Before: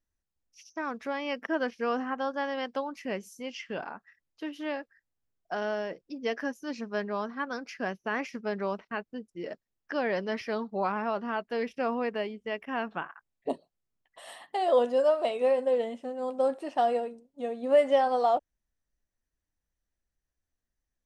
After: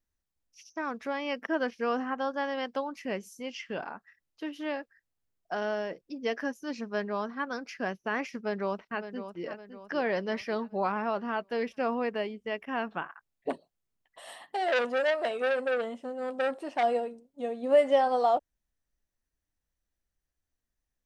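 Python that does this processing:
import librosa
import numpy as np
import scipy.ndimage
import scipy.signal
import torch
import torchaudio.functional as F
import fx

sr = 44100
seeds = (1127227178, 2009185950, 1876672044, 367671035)

y = fx.echo_throw(x, sr, start_s=8.38, length_s=1.1, ms=560, feedback_pct=45, wet_db=-10.5)
y = fx.transformer_sat(y, sr, knee_hz=1700.0, at=(13.5, 16.83))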